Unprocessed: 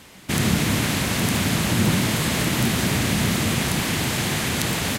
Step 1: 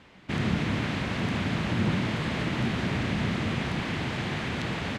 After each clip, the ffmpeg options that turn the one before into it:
-af "lowpass=3k,volume=-6dB"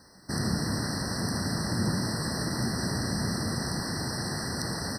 -af "aexciter=amount=11.4:drive=4.6:freq=4.8k,afftfilt=real='re*eq(mod(floor(b*sr/1024/2000),2),0)':imag='im*eq(mod(floor(b*sr/1024/2000),2),0)':win_size=1024:overlap=0.75,volume=-2dB"

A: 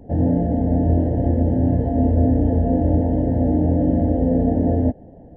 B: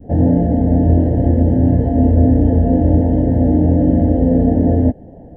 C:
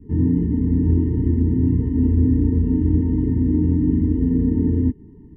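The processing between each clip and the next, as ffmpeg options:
-af "adynamicequalizer=threshold=0.0158:dfrequency=740:dqfactor=1.1:tfrequency=740:tqfactor=1.1:attack=5:release=100:ratio=0.375:range=1.5:mode=cutabove:tftype=bell,volume=5.5dB"
-af "afftfilt=real='re*eq(mod(floor(b*sr/1024/440),2),0)':imag='im*eq(mod(floor(b*sr/1024/440),2),0)':win_size=1024:overlap=0.75,volume=-5dB"

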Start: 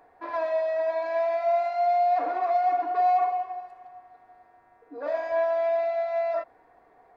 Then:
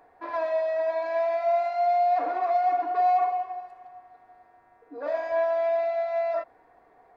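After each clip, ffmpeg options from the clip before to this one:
-af anull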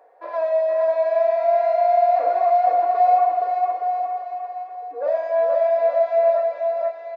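-af "highpass=f=530:t=q:w=4.9,aecho=1:1:470|869.5|1209|1498|1743:0.631|0.398|0.251|0.158|0.1,volume=-2.5dB"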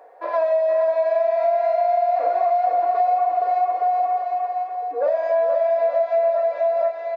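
-af "acompressor=threshold=-23dB:ratio=6,volume=6dB"

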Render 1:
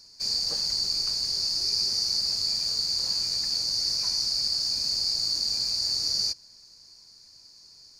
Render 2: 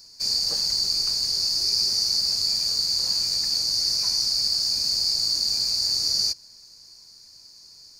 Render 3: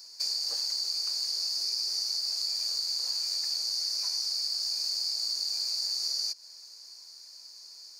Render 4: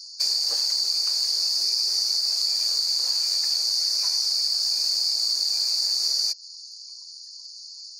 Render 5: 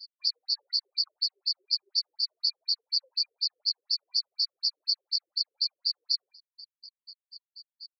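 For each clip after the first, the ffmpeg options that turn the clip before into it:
-af "highshelf=f=9.8k:g=9.5,volume=2dB"
-af "acompressor=threshold=-29dB:ratio=5,highpass=520"
-af "afftfilt=real='re*gte(hypot(re,im),0.00141)':imag='im*gte(hypot(re,im),0.00141)':win_size=1024:overlap=0.75,volume=7.5dB"
-af "afftdn=nr=27:nf=-38,afftfilt=real='re*between(b*sr/1024,370*pow(4200/370,0.5+0.5*sin(2*PI*4.1*pts/sr))/1.41,370*pow(4200/370,0.5+0.5*sin(2*PI*4.1*pts/sr))*1.41)':imag='im*between(b*sr/1024,370*pow(4200/370,0.5+0.5*sin(2*PI*4.1*pts/sr))/1.41,370*pow(4200/370,0.5+0.5*sin(2*PI*4.1*pts/sr))*1.41)':win_size=1024:overlap=0.75"

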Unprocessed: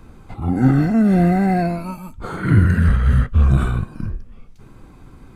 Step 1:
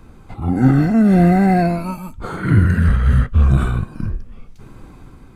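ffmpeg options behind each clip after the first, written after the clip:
-af "dynaudnorm=f=120:g=7:m=4dB"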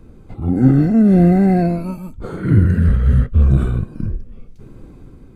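-af "lowshelf=f=650:t=q:w=1.5:g=7,volume=-6.5dB"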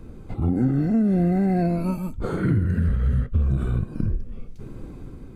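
-af "acompressor=threshold=-20dB:ratio=6,volume=1.5dB"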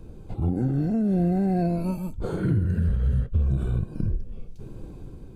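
-af "equalizer=f=250:t=o:w=0.33:g=-6,equalizer=f=1.25k:t=o:w=0.33:g=-8,equalizer=f=2k:t=o:w=0.33:g=-10,volume=-1.5dB"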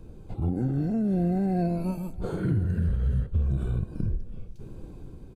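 -af "aecho=1:1:339|678|1017|1356:0.1|0.055|0.0303|0.0166,volume=-2.5dB"

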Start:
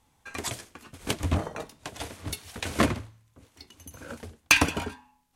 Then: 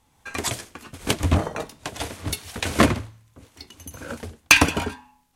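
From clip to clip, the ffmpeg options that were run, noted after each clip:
-af "dynaudnorm=f=100:g=3:m=4dB,volume=2.5dB"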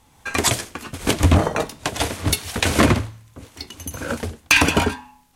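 -af "alimiter=limit=-12dB:level=0:latency=1:release=76,volume=8dB"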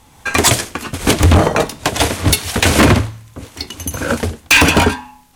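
-af "asoftclip=type=hard:threshold=-13.5dB,volume=8.5dB"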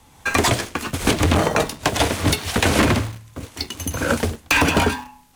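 -filter_complex "[0:a]acrossover=split=120|1600|5300[a][b][c][d];[a]acompressor=threshold=-23dB:ratio=4[e];[b]acompressor=threshold=-14dB:ratio=4[f];[c]acompressor=threshold=-21dB:ratio=4[g];[d]acompressor=threshold=-28dB:ratio=4[h];[e][f][g][h]amix=inputs=4:normalize=0,asplit=2[i][j];[j]acrusher=bits=4:mix=0:aa=0.000001,volume=-9.5dB[k];[i][k]amix=inputs=2:normalize=0,volume=-4dB"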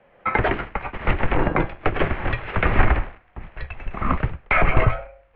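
-af "highpass=f=360:t=q:w=0.5412,highpass=f=360:t=q:w=1.307,lowpass=f=2.7k:t=q:w=0.5176,lowpass=f=2.7k:t=q:w=0.7071,lowpass=f=2.7k:t=q:w=1.932,afreqshift=-300,asubboost=boost=7.5:cutoff=82"

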